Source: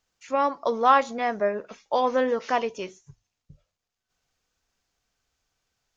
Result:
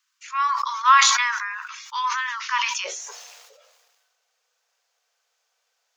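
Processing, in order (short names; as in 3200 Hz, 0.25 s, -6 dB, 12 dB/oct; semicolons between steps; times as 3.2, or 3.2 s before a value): steep high-pass 980 Hz 96 dB/oct, from 2.84 s 450 Hz; sustainer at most 33 dB/s; gain +5 dB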